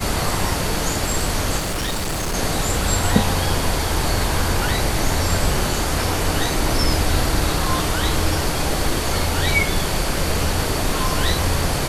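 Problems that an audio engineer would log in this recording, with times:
1.58–2.35 clipped -20 dBFS

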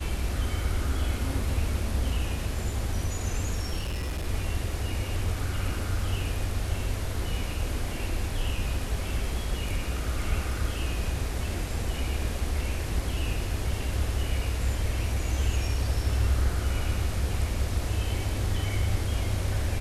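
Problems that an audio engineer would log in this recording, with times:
3.79–4.25 clipped -27 dBFS

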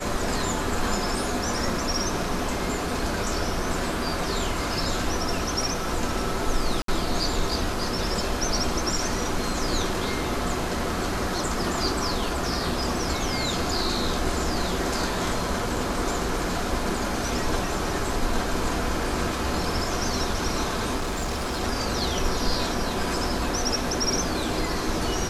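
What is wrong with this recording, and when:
6.82–6.88 gap 63 ms
20.96–21.62 clipped -24 dBFS

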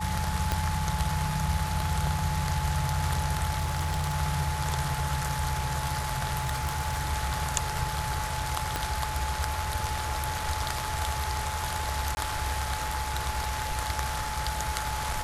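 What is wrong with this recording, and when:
tone 860 Hz -34 dBFS
0.52 pop -12 dBFS
3.59–4.17 clipped -24 dBFS
6.38–7.07 clipped -24 dBFS
8.76 pop -12 dBFS
12.15–12.17 gap 20 ms

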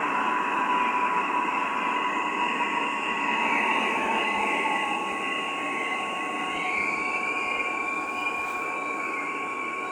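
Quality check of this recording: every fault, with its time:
tone 1100 Hz -32 dBFS

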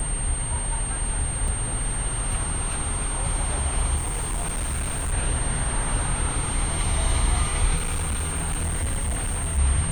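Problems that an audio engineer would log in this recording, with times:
tone 8700 Hz -29 dBFS
1.48 gap 3.6 ms
3.96–5.13 clipped -23 dBFS
7.76–9.59 clipped -22 dBFS

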